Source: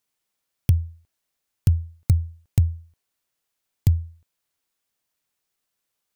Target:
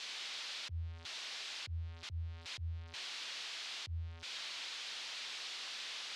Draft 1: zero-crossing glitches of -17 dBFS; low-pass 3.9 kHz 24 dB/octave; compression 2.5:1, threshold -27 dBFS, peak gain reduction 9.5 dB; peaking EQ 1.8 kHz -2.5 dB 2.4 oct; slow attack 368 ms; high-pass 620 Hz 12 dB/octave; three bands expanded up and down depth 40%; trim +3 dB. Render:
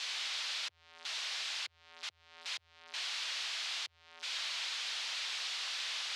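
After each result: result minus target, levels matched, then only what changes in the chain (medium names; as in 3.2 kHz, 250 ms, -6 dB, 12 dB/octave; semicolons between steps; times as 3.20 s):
zero-crossing glitches: distortion +6 dB; 500 Hz band -3.5 dB
change: zero-crossing glitches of -23 dBFS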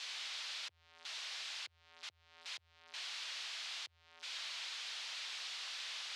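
500 Hz band -3.5 dB
remove: high-pass 620 Hz 12 dB/octave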